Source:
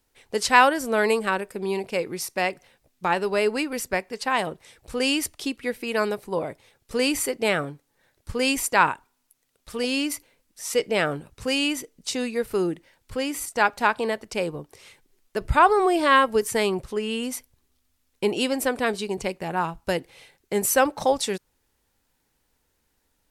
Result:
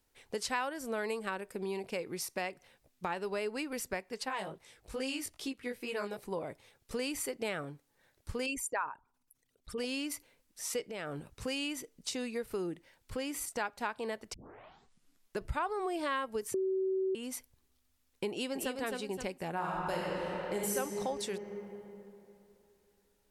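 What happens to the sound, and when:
0:04.25–0:06.17: chorus effect 2.4 Hz, delay 15 ms, depth 5.8 ms
0:08.46–0:09.78: spectral envelope exaggerated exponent 2
0:10.85–0:11.34: downward compressor, threshold −29 dBFS
0:14.34: tape start 1.06 s
0:16.54–0:17.15: beep over 380 Hz −12.5 dBFS
0:18.29–0:18.76: delay throw 260 ms, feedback 30%, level −4.5 dB
0:19.53–0:20.73: thrown reverb, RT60 2.9 s, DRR −6 dB
whole clip: downward compressor 3 to 1, threshold −31 dBFS; level −4.5 dB

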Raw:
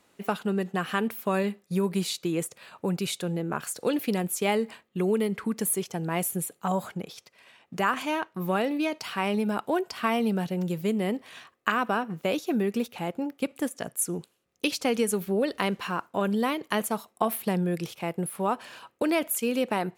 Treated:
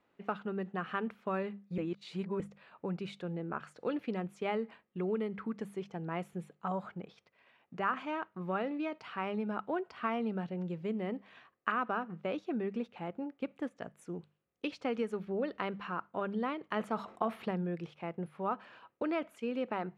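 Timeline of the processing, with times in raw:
0:01.78–0:02.40: reverse
0:16.76–0:17.51: envelope flattener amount 50%
whole clip: low-pass filter 2,400 Hz 12 dB per octave; mains-hum notches 50/100/150/200 Hz; dynamic equaliser 1,300 Hz, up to +6 dB, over −50 dBFS, Q 6.1; level −8.5 dB

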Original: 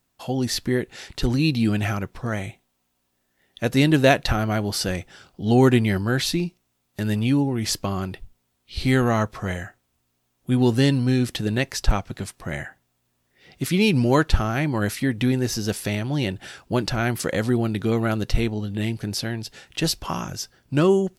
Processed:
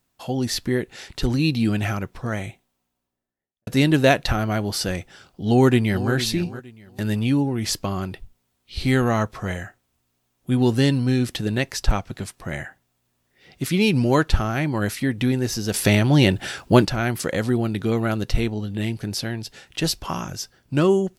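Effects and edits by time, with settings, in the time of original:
0:02.46–0:03.67: fade out and dull
0:05.45–0:06.13: delay throw 460 ms, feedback 25%, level −13 dB
0:15.74–0:16.85: clip gain +8.5 dB

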